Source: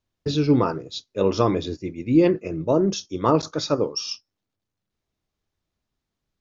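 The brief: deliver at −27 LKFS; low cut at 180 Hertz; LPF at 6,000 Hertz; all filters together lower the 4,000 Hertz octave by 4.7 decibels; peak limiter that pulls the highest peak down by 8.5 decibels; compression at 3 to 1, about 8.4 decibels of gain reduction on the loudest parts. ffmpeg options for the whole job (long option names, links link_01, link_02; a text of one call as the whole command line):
ffmpeg -i in.wav -af "highpass=180,lowpass=6000,equalizer=frequency=4000:width_type=o:gain=-4.5,acompressor=threshold=-24dB:ratio=3,volume=5dB,alimiter=limit=-16dB:level=0:latency=1" out.wav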